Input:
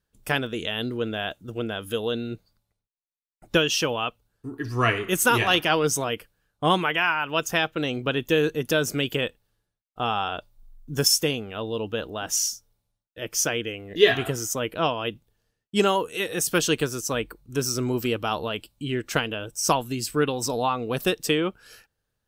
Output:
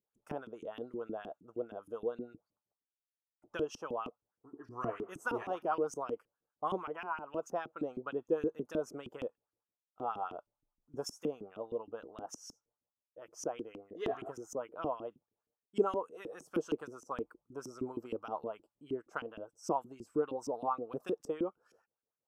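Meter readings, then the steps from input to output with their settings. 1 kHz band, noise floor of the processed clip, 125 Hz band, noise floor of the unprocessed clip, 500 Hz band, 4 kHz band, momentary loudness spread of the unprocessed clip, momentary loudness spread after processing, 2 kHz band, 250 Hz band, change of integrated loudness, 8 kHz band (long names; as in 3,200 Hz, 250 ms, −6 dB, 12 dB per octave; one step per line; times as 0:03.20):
−12.0 dB, below −85 dBFS, −22.0 dB, −82 dBFS, −11.0 dB, −29.0 dB, 11 LU, 12 LU, −21.5 dB, −13.0 dB, −14.5 dB, −25.5 dB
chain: tape wow and flutter 24 cents
auto-filter band-pass saw up 6.4 Hz 260–2,900 Hz
flat-topped bell 2,700 Hz −16 dB
level −4 dB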